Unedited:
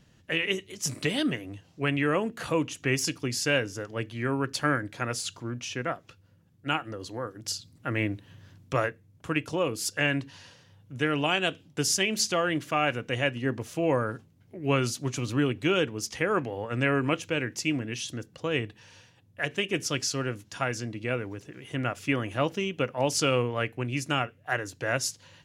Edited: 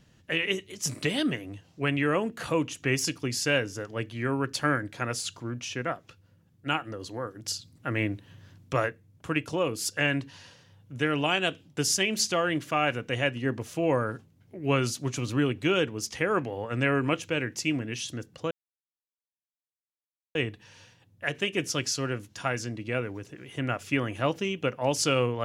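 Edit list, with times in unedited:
18.51 insert silence 1.84 s

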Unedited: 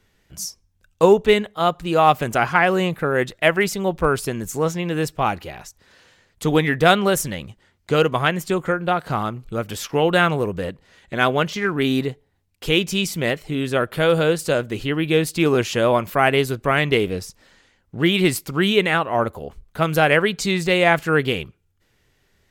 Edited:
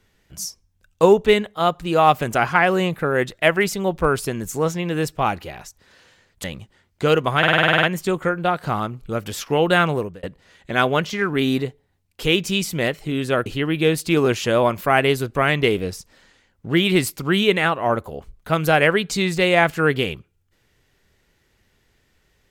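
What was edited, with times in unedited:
6.44–7.32 cut
8.26 stutter 0.05 s, 10 plays
10.38–10.66 fade out
13.89–14.75 cut

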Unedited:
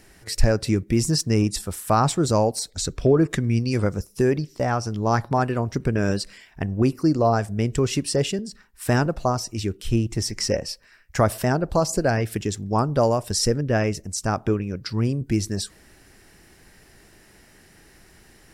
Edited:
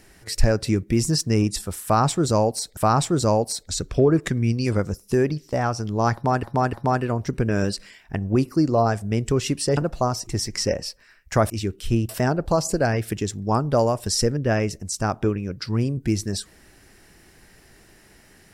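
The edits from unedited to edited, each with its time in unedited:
1.84–2.77 loop, 2 plays
5.2–5.5 loop, 3 plays
8.24–9.01 cut
9.51–10.1 move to 11.33

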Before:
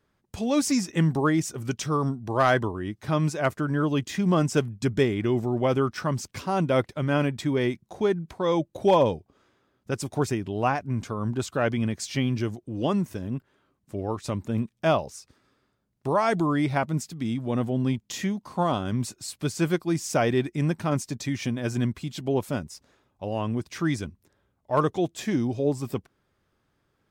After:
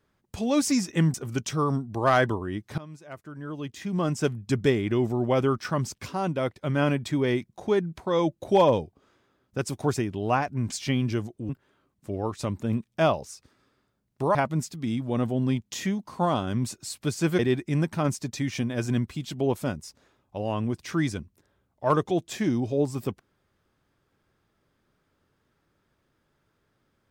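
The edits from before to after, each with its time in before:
1.14–1.47 cut
3.11–4.79 fade in quadratic, from -19.5 dB
6.19–6.94 fade out, to -7.5 dB
11.05–12 cut
12.77–13.34 cut
16.2–16.73 cut
19.77–20.26 cut

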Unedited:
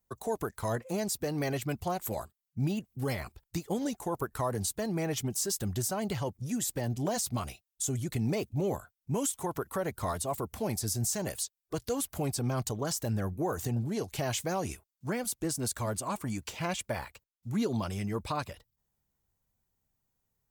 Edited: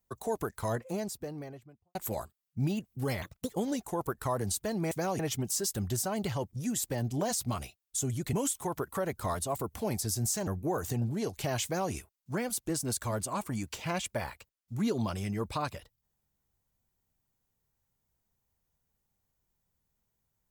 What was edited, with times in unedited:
0.58–1.95 studio fade out
3.22–3.63 speed 150%
8.19–9.12 cut
11.26–13.22 cut
14.39–14.67 copy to 5.05

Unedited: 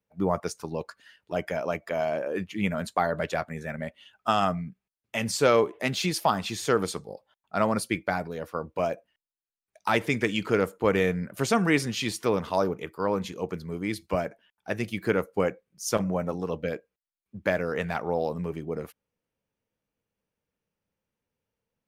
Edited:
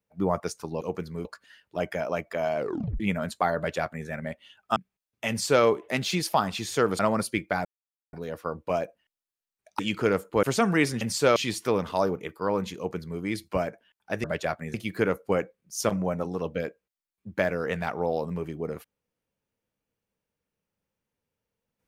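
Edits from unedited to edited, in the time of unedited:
2.13 tape stop 0.43 s
3.13–3.63 copy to 14.82
4.32–4.67 cut
5.2–5.55 copy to 11.94
6.9–7.56 cut
8.22 insert silence 0.48 s
9.88–10.27 cut
10.91–11.36 cut
13.35–13.79 copy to 0.81

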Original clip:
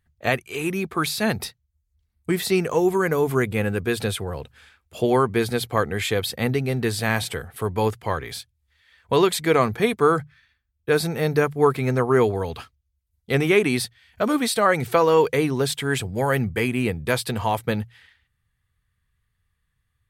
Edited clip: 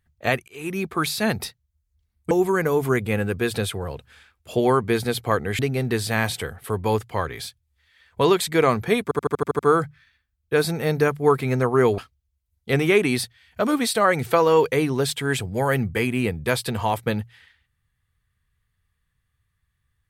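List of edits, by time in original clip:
0.48–0.81 fade in, from -23.5 dB
2.31–2.77 cut
6.05–6.51 cut
9.95 stutter 0.08 s, 8 plays
12.34–12.59 cut

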